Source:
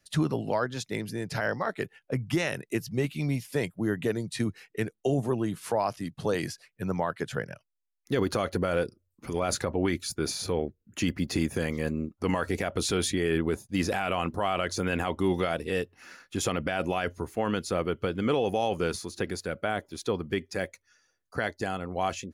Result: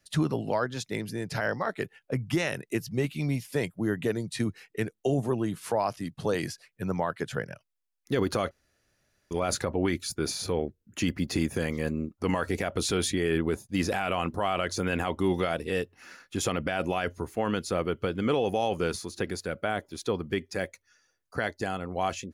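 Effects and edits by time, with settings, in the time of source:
8.51–9.31 room tone

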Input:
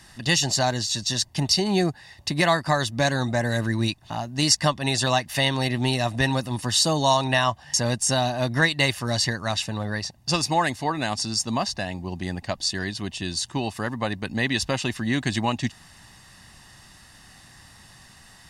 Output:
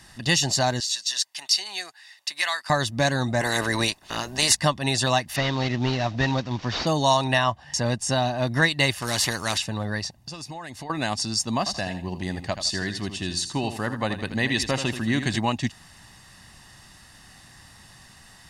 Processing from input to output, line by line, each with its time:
0.8–2.7 HPF 1500 Hz
3.4–4.55 spectral limiter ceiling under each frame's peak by 20 dB
5.36–6.87 CVSD 32 kbps
7.38–8.47 high shelf 7100 Hz -11 dB
9.02–9.58 spectral compressor 2:1
10.15–10.9 compressor 10:1, threshold -33 dBFS
11.58–15.38 feedback echo 81 ms, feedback 30%, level -10 dB

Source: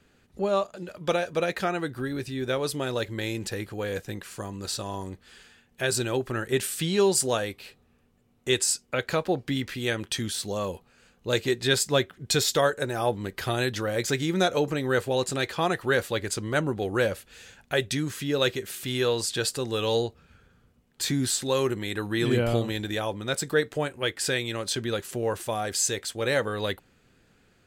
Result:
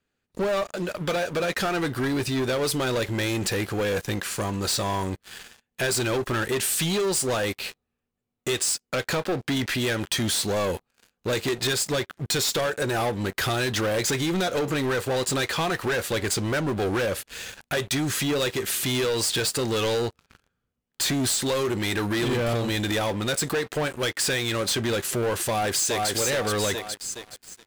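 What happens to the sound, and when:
25.38–26.1 echo throw 0.42 s, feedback 40%, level -4 dB
whole clip: low shelf 410 Hz -4 dB; compressor 6:1, threshold -28 dBFS; sample leveller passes 5; gain -5.5 dB

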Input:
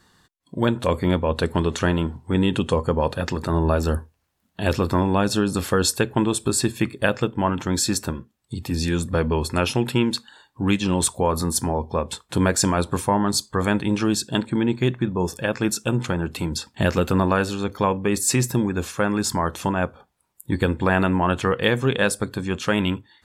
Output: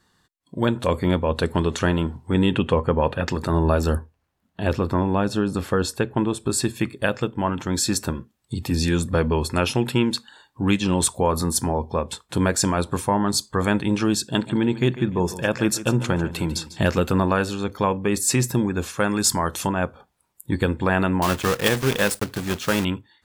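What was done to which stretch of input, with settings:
2.53–3.28 resonant high shelf 3800 Hz -11 dB, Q 1.5
3.98–6.5 high shelf 3200 Hz -9.5 dB
14.25–16.9 feedback echo 0.147 s, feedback 27%, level -14.5 dB
19–19.67 high shelf 3700 Hz +9.5 dB
21.22–22.86 block floating point 3-bit
whole clip: AGC; gain -6 dB

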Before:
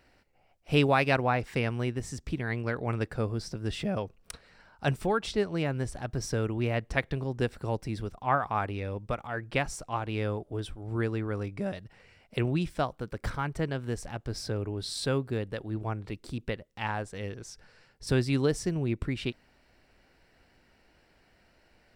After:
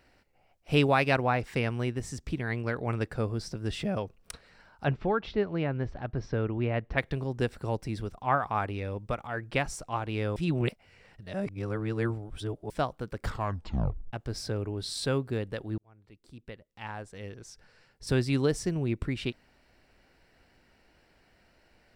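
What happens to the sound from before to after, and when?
4.84–6.98 Gaussian blur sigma 2.4 samples
10.36–12.7 reverse
13.23 tape stop 0.90 s
15.78–18.3 fade in

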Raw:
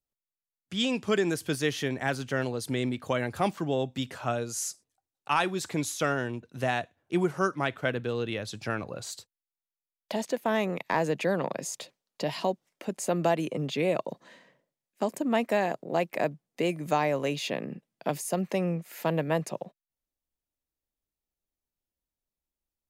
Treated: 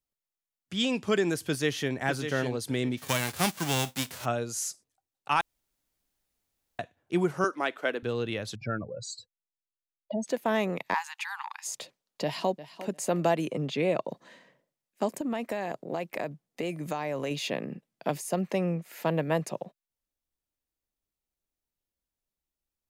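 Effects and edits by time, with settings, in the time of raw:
1.41–1.96 echo throw 0.6 s, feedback 20%, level -8 dB
2.97–4.24 spectral whitening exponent 0.3
5.41–6.79 room tone
7.44–8.03 HPF 270 Hz 24 dB/oct
8.55–10.27 spectral contrast raised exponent 2.6
10.94–11.67 brick-wall FIR high-pass 790 Hz
12.23–12.85 echo throw 0.35 s, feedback 15%, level -14.5 dB
13.58–14.12 high shelf 9500 Hz -11.5 dB
15.1–17.31 compressor, threshold -27 dBFS
18.13–19.23 high shelf 5800 Hz -3.5 dB

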